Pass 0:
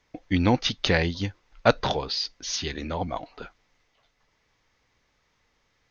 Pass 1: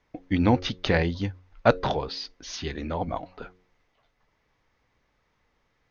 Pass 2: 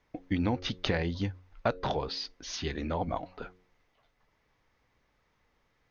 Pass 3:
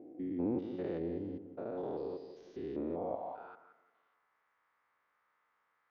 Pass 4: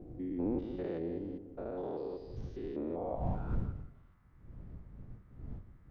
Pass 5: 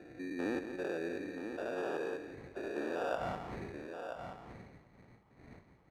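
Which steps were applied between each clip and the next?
high shelf 3000 Hz -11.5 dB; de-hum 91.08 Hz, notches 6; gain +1 dB
compressor 5:1, threshold -24 dBFS, peak gain reduction 11 dB; gain -1.5 dB
stepped spectrum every 0.2 s; tape echo 0.172 s, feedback 49%, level -9 dB, low-pass 1100 Hz; band-pass sweep 360 Hz -> 1300 Hz, 2.86–3.7; gain +4 dB
wind noise 110 Hz -43 dBFS
sample-and-hold 21×; band-pass 830 Hz, Q 0.9; echo 0.978 s -7.5 dB; gain +5 dB

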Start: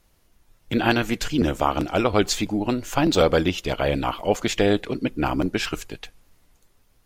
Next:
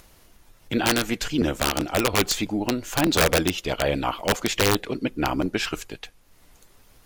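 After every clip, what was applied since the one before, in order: low shelf 220 Hz -4 dB; upward compressor, threshold -42 dBFS; wrapped overs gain 11.5 dB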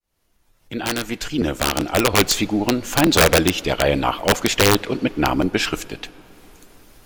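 opening faded in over 2.21 s; on a send at -21 dB: LPF 4800 Hz + reverb RT60 4.4 s, pre-delay 33 ms; on the sum: gain +5.5 dB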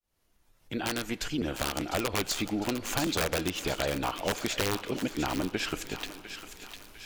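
compressor 4:1, threshold -23 dBFS, peak gain reduction 11 dB; on a send: thinning echo 0.703 s, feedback 60%, high-pass 1200 Hz, level -8 dB; on the sum: gain -5 dB

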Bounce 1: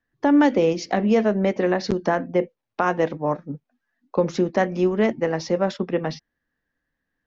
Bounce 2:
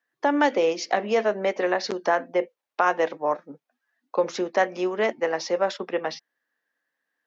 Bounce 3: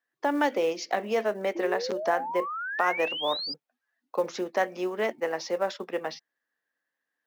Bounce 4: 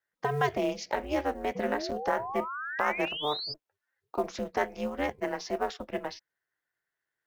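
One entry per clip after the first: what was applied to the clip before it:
HPF 510 Hz 12 dB/oct; gain +1.5 dB
short-mantissa float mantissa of 4-bit; painted sound rise, 1.55–3.54, 330–5000 Hz -29 dBFS; gain -4.5 dB
ring modulator 150 Hz

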